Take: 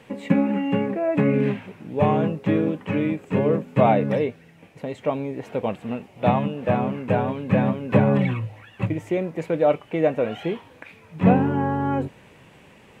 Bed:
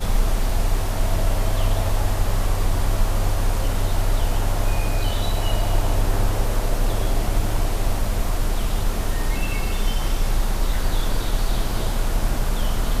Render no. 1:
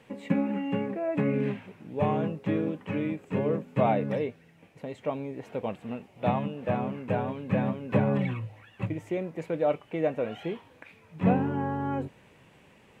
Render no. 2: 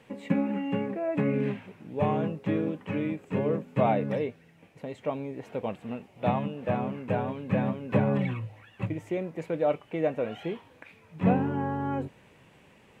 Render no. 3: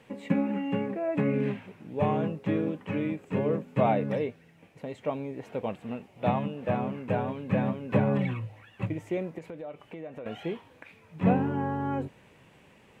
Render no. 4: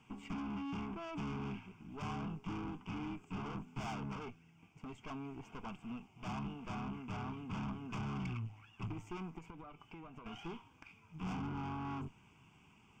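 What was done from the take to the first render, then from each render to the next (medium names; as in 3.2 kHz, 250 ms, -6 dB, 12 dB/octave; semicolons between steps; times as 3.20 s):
trim -7 dB
no audible change
9.38–10.26 s: compression 5:1, threshold -38 dBFS
valve stage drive 36 dB, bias 0.75; static phaser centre 2.7 kHz, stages 8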